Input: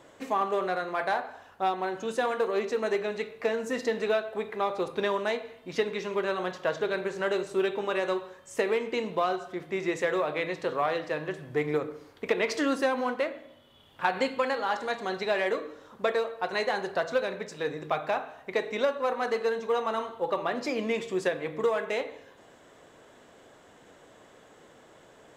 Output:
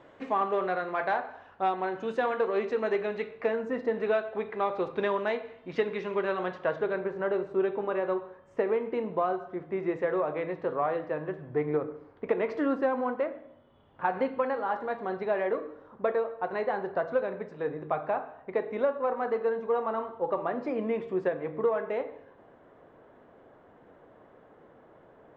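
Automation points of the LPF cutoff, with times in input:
3.34 s 2600 Hz
3.85 s 1300 Hz
4.19 s 2500 Hz
6.46 s 2500 Hz
7.12 s 1300 Hz

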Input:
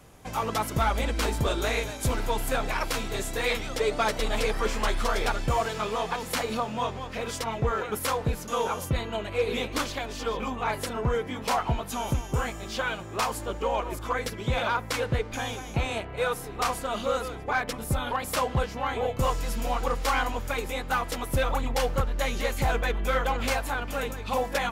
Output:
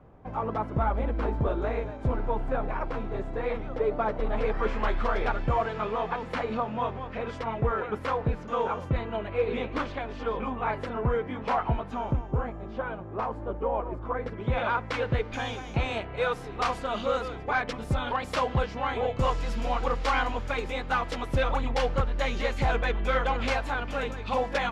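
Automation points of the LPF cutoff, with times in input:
4.2 s 1100 Hz
4.64 s 2000 Hz
11.79 s 2000 Hz
12.37 s 1000 Hz
14.11 s 1000 Hz
14.62 s 2300 Hz
15.4 s 4200 Hz

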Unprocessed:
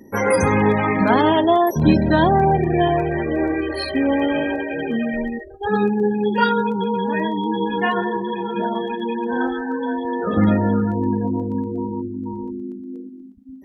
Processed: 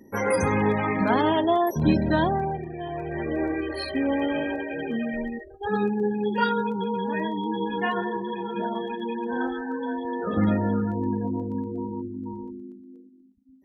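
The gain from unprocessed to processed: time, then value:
2.18 s -6 dB
2.78 s -18 dB
3.25 s -6 dB
12.32 s -6 dB
13.08 s -16 dB

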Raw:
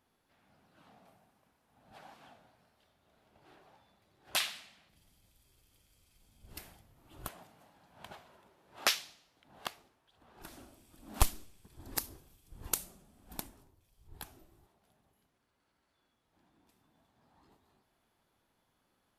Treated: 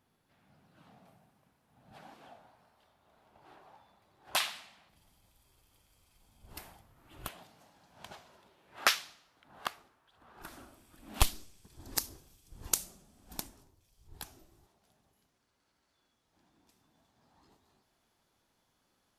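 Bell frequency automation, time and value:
bell +7 dB 1.1 oct
1.93 s 140 Hz
2.43 s 940 Hz
6.8 s 940 Hz
7.62 s 5900 Hz
8.33 s 5900 Hz
8.91 s 1300 Hz
10.87 s 1300 Hz
11.45 s 5900 Hz

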